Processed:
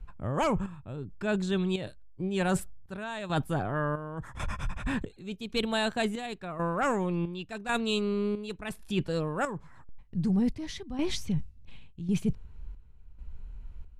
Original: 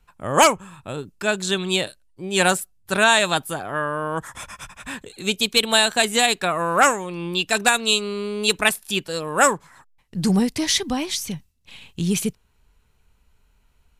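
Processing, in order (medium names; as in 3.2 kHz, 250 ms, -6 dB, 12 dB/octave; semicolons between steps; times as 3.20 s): RIAA curve playback; reverse; compression 5:1, threshold -28 dBFS, peak gain reduction 18 dB; reverse; square tremolo 0.91 Hz, depth 65%, duty 60%; trim +1.5 dB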